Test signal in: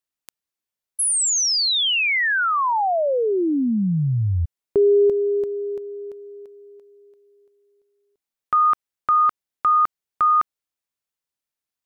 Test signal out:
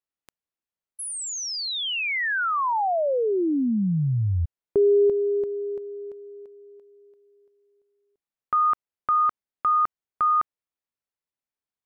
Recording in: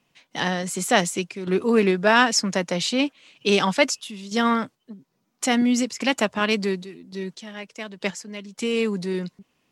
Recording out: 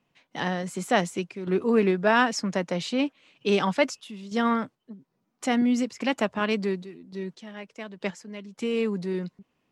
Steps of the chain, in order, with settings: treble shelf 3.1 kHz -10.5 dB; trim -2.5 dB

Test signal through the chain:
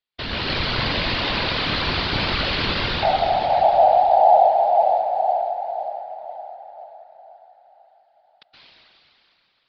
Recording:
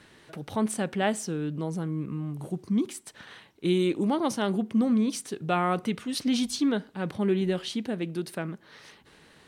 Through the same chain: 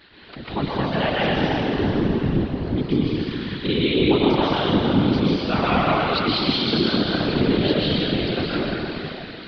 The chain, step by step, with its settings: treble shelf 2.4 kHz +10.5 dB; on a send: band-passed feedback delay 514 ms, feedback 66%, band-pass 1.5 kHz, level -20 dB; on the sum: plate-style reverb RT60 3.2 s, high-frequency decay 1×, pre-delay 110 ms, DRR -7.5 dB; in parallel at -0.5 dB: peak limiter -14.5 dBFS; on the sum: modulation noise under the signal 29 dB; steep low-pass 4.6 kHz 72 dB/octave; whisper effect; trim -5 dB

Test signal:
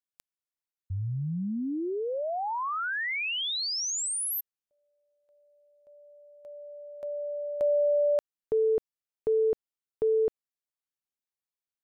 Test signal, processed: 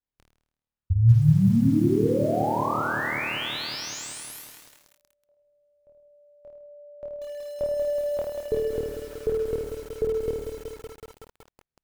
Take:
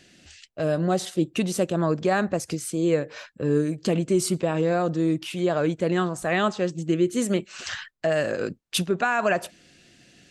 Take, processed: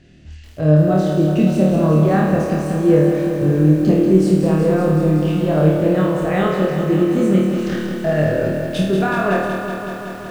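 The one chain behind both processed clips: RIAA curve playback; flutter echo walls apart 4.5 m, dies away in 0.72 s; bit-crushed delay 187 ms, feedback 80%, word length 7-bit, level -7 dB; trim -1 dB

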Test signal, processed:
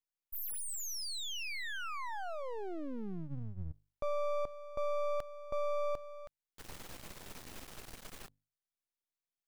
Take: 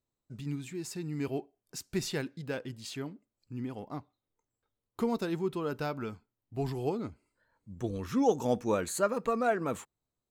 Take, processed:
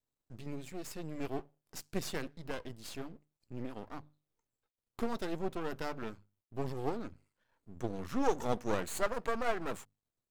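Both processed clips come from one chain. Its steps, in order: hum notches 50/100/150 Hz; half-wave rectifier

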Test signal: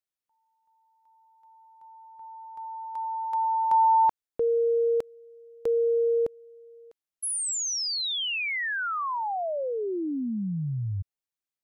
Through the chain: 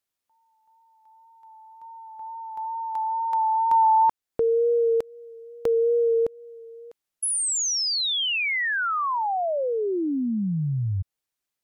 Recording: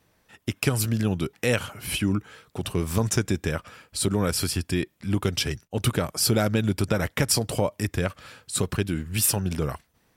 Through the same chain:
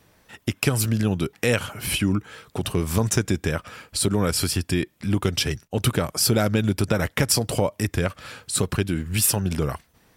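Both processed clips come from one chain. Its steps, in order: in parallel at +2 dB: compression, threshold -34 dBFS; on the sum: wow and flutter 28 cents

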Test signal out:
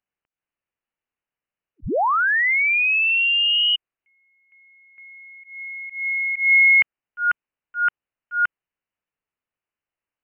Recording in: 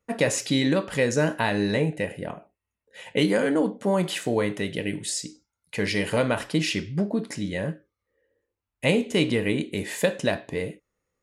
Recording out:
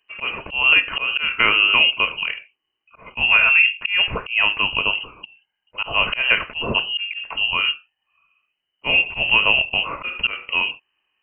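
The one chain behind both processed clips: frequency inversion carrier 3 kHz; slow attack 177 ms; trim +8 dB

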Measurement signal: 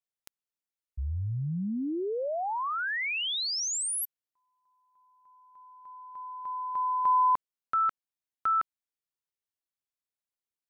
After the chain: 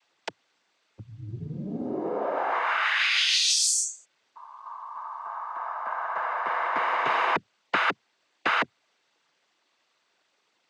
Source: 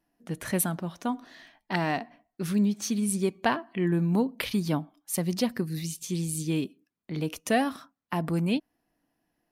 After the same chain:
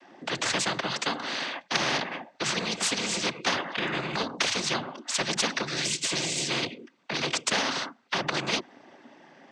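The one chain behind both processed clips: three-band isolator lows -16 dB, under 250 Hz, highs -20 dB, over 4.9 kHz; noise-vocoded speech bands 16; spectrum-flattening compressor 4:1; trim +3 dB

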